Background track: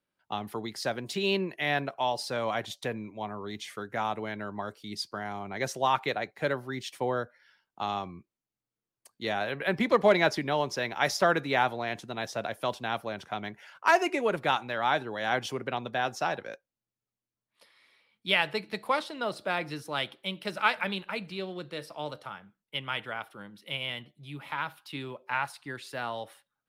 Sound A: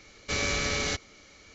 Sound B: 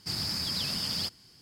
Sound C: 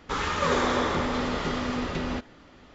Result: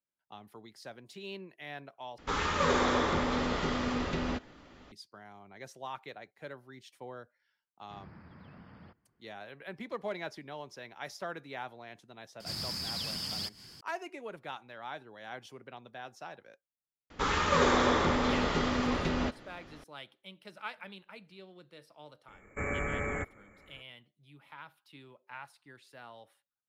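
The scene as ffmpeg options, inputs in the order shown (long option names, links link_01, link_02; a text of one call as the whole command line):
ffmpeg -i bed.wav -i cue0.wav -i cue1.wav -i cue2.wav -filter_complex "[3:a]asplit=2[link_01][link_02];[2:a]asplit=2[link_03][link_04];[0:a]volume=-15.5dB[link_05];[link_03]lowpass=frequency=1800:width=0.5412,lowpass=frequency=1800:width=1.3066[link_06];[link_04]acompressor=mode=upward:threshold=-36dB:ratio=2.5:attack=3.2:release=140:knee=2.83:detection=peak[link_07];[1:a]asuperstop=centerf=4300:order=12:qfactor=0.76[link_08];[link_05]asplit=2[link_09][link_10];[link_09]atrim=end=2.184[link_11];[link_01]atrim=end=2.74,asetpts=PTS-STARTPTS,volume=-3dB[link_12];[link_10]atrim=start=4.916[link_13];[link_06]atrim=end=1.41,asetpts=PTS-STARTPTS,volume=-12.5dB,afade=type=in:duration=0.004:curve=hsin,afade=type=out:start_time=1.406:duration=0.004:curve=hsin,adelay=7840[link_14];[link_07]atrim=end=1.41,asetpts=PTS-STARTPTS,volume=-5dB,afade=type=in:duration=0.004:curve=hsin,afade=type=out:start_time=1.406:duration=0.004:curve=hsin,adelay=12400[link_15];[link_02]atrim=end=2.74,asetpts=PTS-STARTPTS,volume=-1dB,afade=type=in:duration=0.004:curve=hsin,afade=type=out:start_time=2.736:duration=0.004:curve=hsin,adelay=17100[link_16];[link_08]atrim=end=1.54,asetpts=PTS-STARTPTS,volume=-2.5dB,afade=type=in:duration=0.004:curve=hsin,afade=type=out:start_time=1.536:duration=0.004:curve=hsin,adelay=982548S[link_17];[link_11][link_12]acrossfade=duration=0.004:curve1=hsin:curve2=hsin[link_18];[link_18][link_13]acrossfade=duration=0.004:curve1=hsin:curve2=hsin[link_19];[link_19][link_14][link_15][link_16][link_17]amix=inputs=5:normalize=0" out.wav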